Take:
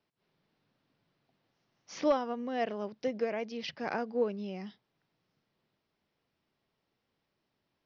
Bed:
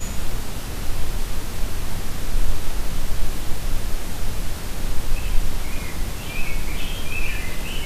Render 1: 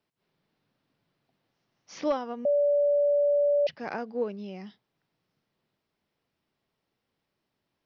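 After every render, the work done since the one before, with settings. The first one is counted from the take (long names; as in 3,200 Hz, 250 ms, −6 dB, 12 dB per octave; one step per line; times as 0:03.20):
0:02.45–0:03.67: beep over 578 Hz −20 dBFS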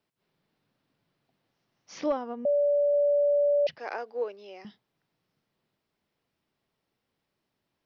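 0:02.06–0:02.94: high-shelf EQ 2,600 Hz −11.5 dB
0:03.78–0:04.65: high-pass filter 390 Hz 24 dB per octave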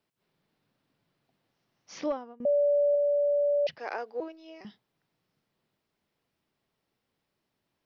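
0:01.96–0:02.40: fade out, to −23.5 dB
0:02.95–0:03.67: parametric band 1,200 Hz −3.5 dB 2.5 octaves
0:04.20–0:04.61: phases set to zero 321 Hz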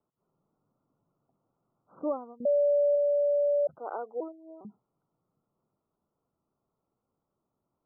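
Butterworth low-pass 1,400 Hz 96 dB per octave
gate on every frequency bin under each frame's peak −25 dB strong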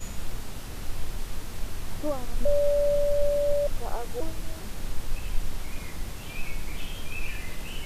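mix in bed −8.5 dB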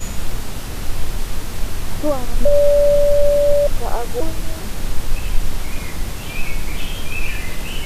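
level +10.5 dB
brickwall limiter −2 dBFS, peak gain reduction 2.5 dB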